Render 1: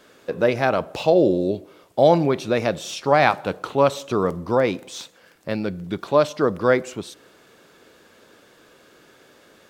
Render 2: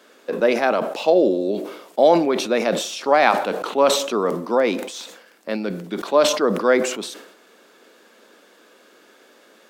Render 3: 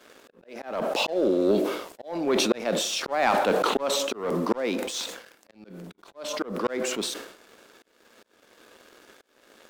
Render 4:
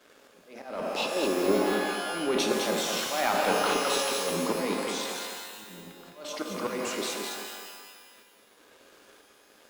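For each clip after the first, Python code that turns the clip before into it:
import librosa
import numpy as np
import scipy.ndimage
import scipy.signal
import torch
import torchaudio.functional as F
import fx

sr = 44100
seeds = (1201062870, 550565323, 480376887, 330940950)

y1 = scipy.signal.sosfilt(scipy.signal.cheby1(4, 1.0, 210.0, 'highpass', fs=sr, output='sos'), x)
y1 = fx.low_shelf(y1, sr, hz=340.0, db=-2.5)
y1 = fx.sustainer(y1, sr, db_per_s=70.0)
y1 = F.gain(torch.from_numpy(y1), 1.5).numpy()
y2 = fx.auto_swell(y1, sr, attack_ms=663.0)
y2 = fx.leveller(y2, sr, passes=2)
y2 = fx.auto_swell(y2, sr, attack_ms=387.0)
y2 = F.gain(torch.from_numpy(y2), -1.5).numpy()
y3 = fx.echo_feedback(y2, sr, ms=210, feedback_pct=34, wet_db=-5)
y3 = fx.rev_shimmer(y3, sr, seeds[0], rt60_s=1.3, semitones=12, shimmer_db=-2, drr_db=5.5)
y3 = F.gain(torch.from_numpy(y3), -5.5).numpy()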